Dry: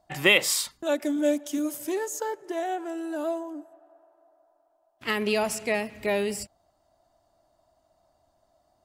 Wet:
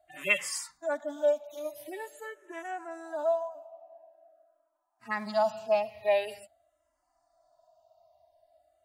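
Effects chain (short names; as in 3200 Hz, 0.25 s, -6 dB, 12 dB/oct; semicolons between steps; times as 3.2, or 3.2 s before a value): median-filter separation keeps harmonic; resonant low shelf 520 Hz -7 dB, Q 3; endless phaser -0.46 Hz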